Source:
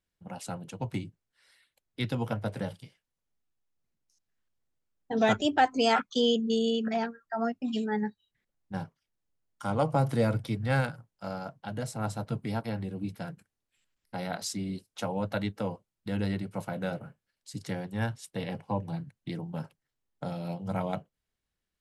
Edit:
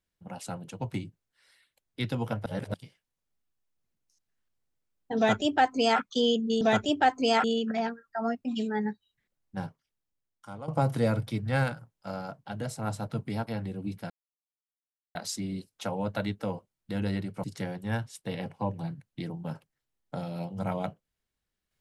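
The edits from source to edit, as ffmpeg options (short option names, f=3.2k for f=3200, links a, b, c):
-filter_complex "[0:a]asplit=9[a][b][c][d][e][f][g][h][i];[a]atrim=end=2.462[j];[b]atrim=start=2.458:end=2.742,asetpts=PTS-STARTPTS,areverse[k];[c]atrim=start=2.738:end=6.612[l];[d]atrim=start=5.168:end=6.002[m];[e]atrim=start=6.608:end=9.85,asetpts=PTS-STARTPTS,afade=t=out:st=2.202:d=1.04:silence=0.149624[n];[f]atrim=start=9.85:end=13.27,asetpts=PTS-STARTPTS,afade=t=in:d=0.004:c=hsin:silence=0.149624,afade=t=out:st=3.416:d=0.004:c=hsin[o];[g]atrim=start=13.27:end=14.32,asetpts=PTS-STARTPTS,volume=0[p];[h]atrim=start=14.32:end=16.612,asetpts=PTS-STARTPTS,afade=t=in:d=0.004:c=hsin[q];[i]atrim=start=17.528[r];[j][k]acrossfade=d=0.004:c1=hsin:c2=hsin[s];[s][l]acrossfade=d=0.004:c1=hsin:c2=hsin[t];[t][m]acrossfade=d=0.004:c1=hsin:c2=hsin[u];[n][o][p][q]concat=n=4:v=0:a=1[v];[u][v]acrossfade=d=0.004:c1=hsin:c2=hsin[w];[w][r]acrossfade=d=0.004:c1=hsin:c2=hsin"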